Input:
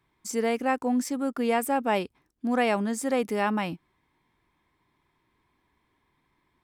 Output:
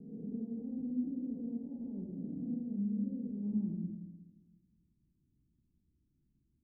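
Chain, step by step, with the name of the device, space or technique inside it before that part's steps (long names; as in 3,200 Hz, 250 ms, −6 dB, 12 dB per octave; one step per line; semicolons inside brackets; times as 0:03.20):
peak hold with a rise ahead of every peak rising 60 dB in 1.82 s
club heard from the street (brickwall limiter −18 dBFS, peak gain reduction 9 dB; low-pass filter 240 Hz 24 dB per octave; convolution reverb RT60 1.2 s, pre-delay 58 ms, DRR −1 dB)
0:02.59–0:03.43: dynamic equaliser 1,200 Hz, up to −7 dB, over −53 dBFS, Q 0.76
level −6 dB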